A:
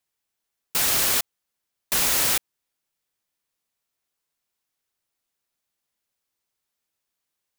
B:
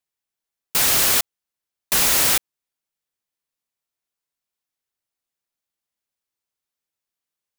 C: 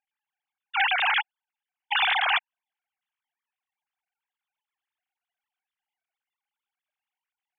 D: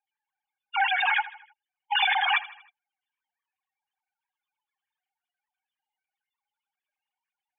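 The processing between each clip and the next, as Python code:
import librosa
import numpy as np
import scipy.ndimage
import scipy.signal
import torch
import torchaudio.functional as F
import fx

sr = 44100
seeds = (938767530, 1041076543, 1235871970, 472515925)

y1 = fx.leveller(x, sr, passes=2)
y1 = y1 * librosa.db_to_amplitude(-1.5)
y2 = fx.sine_speech(y1, sr)
y2 = y2 * librosa.db_to_amplitude(-6.0)
y3 = fx.spec_expand(y2, sr, power=2.5)
y3 = fx.notch_comb(y3, sr, f0_hz=670.0)
y3 = fx.echo_feedback(y3, sr, ms=79, feedback_pct=49, wet_db=-17)
y3 = y3 * librosa.db_to_amplitude(1.0)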